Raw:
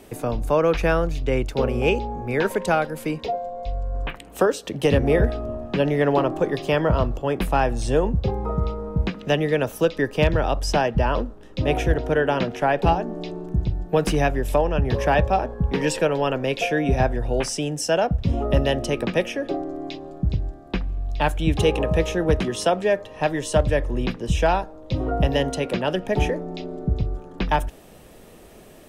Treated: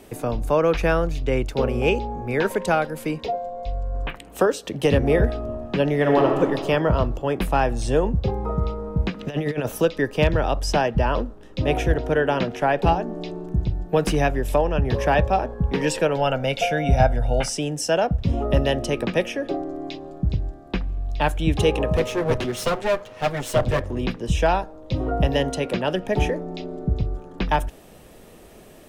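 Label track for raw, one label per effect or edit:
5.980000	6.410000	reverb throw, RT60 1.7 s, DRR 1.5 dB
9.190000	9.820000	compressor with a negative ratio -24 dBFS, ratio -0.5
16.160000	17.500000	comb 1.4 ms
21.960000	24.040000	comb filter that takes the minimum delay 8 ms

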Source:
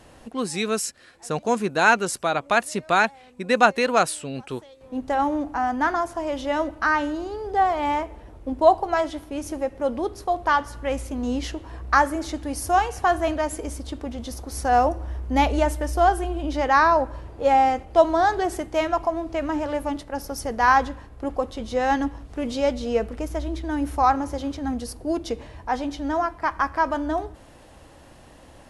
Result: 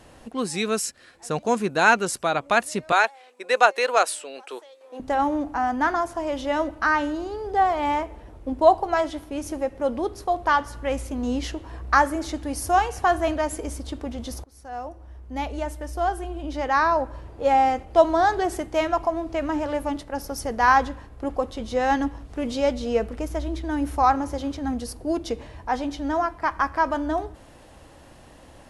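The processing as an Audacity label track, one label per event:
2.920000	5.000000	high-pass 410 Hz 24 dB/octave
14.440000	17.990000	fade in, from -22 dB

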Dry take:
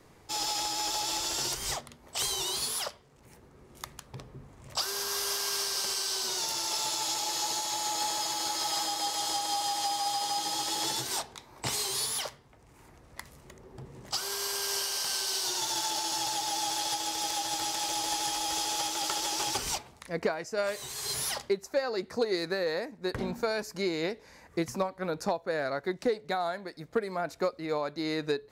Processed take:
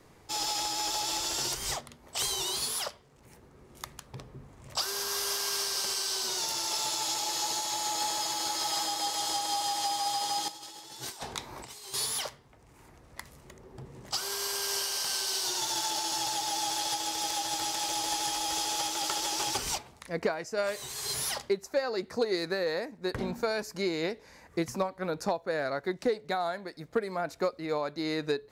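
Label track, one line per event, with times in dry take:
10.480000	11.940000	compressor with a negative ratio -40 dBFS, ratio -0.5

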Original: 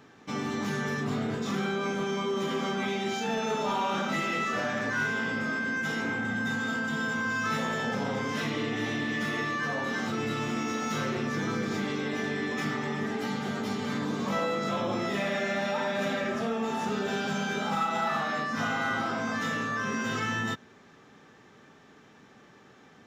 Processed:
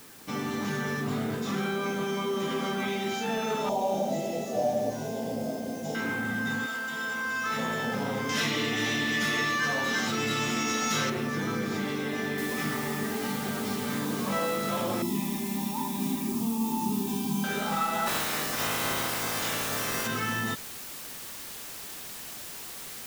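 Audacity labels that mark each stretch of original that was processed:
3.690000	5.950000	FFT filter 370 Hz 0 dB, 700 Hz +11 dB, 1.3 kHz -25 dB, 6.9 kHz +2 dB, 11 kHz -22 dB
6.650000	7.560000	high-pass 950 Hz -> 410 Hz 6 dB/octave
8.290000	11.100000	treble shelf 2.3 kHz +11.5 dB
12.380000	12.380000	noise floor step -51 dB -41 dB
15.020000	17.440000	FFT filter 110 Hz 0 dB, 330 Hz +7 dB, 560 Hz -27 dB, 960 Hz +5 dB, 1.4 kHz -25 dB, 2.3 kHz -9 dB, 6.4 kHz -1 dB, 13 kHz +3 dB
18.060000	20.060000	spectral peaks clipped ceiling under each frame's peak by 19 dB

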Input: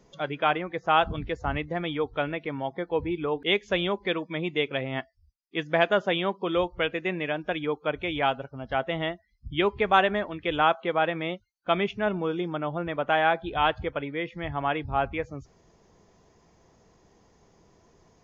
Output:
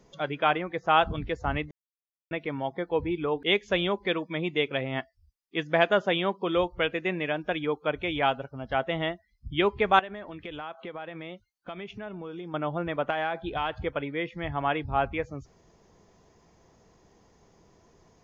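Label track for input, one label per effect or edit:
1.710000	2.310000	mute
9.990000	12.540000	compression 5:1, threshold -36 dBFS
13.100000	13.760000	compression 5:1, threshold -25 dBFS

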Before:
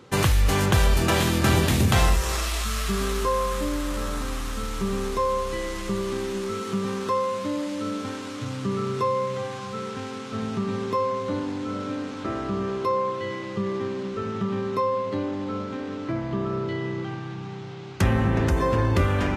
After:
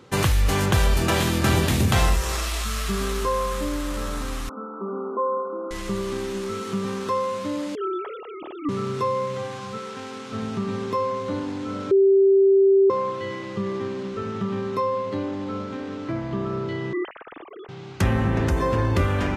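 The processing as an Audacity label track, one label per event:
4.490000	5.710000	brick-wall FIR band-pass 200–1500 Hz
7.750000	8.690000	formants replaced by sine waves
9.770000	10.280000	high-pass 440 Hz -> 170 Hz 6 dB/octave
11.910000	12.900000	bleep 390 Hz -12.5 dBFS
16.930000	17.690000	formants replaced by sine waves

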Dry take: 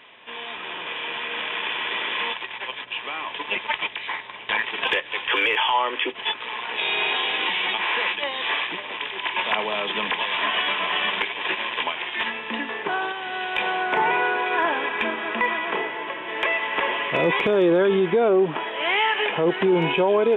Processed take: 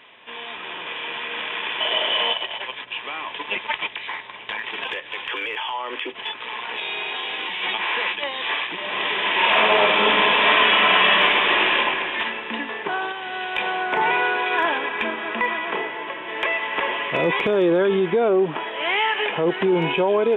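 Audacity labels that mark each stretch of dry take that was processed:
1.800000	2.620000	small resonant body resonances 630/3000 Hz, height 16 dB, ringing for 25 ms
4.090000	7.620000	compression, threshold -24 dBFS
8.750000	11.680000	reverb throw, RT60 2.8 s, DRR -8 dB
14.010000	14.780000	treble shelf 3.2 kHz +8.5 dB

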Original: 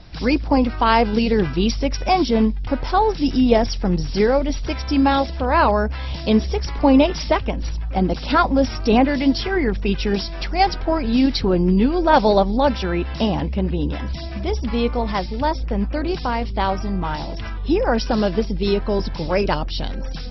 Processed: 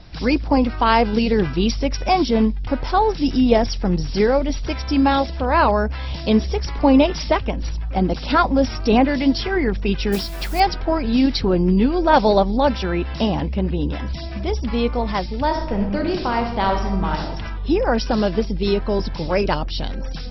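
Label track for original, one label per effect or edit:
10.120000	10.600000	modulation noise under the signal 16 dB
15.450000	17.210000	reverb throw, RT60 0.91 s, DRR 3 dB

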